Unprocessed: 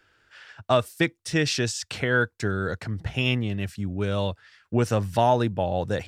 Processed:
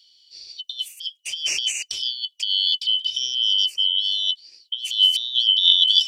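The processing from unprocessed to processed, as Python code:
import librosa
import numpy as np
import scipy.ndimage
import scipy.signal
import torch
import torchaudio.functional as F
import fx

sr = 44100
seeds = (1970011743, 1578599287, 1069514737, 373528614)

y = fx.band_shuffle(x, sr, order='3412')
y = fx.curve_eq(y, sr, hz=(130.0, 210.0, 340.0, 1400.0, 2900.0, 11000.0), db=(0, -9, 3, -9, 11, 7))
y = fx.over_compress(y, sr, threshold_db=-17.0, ratio=-0.5)
y = fx.high_shelf_res(y, sr, hz=2000.0, db=fx.steps((0.0, 8.0), (4.92, 14.0)), q=1.5)
y = y * 10.0 ** (-15.5 / 20.0)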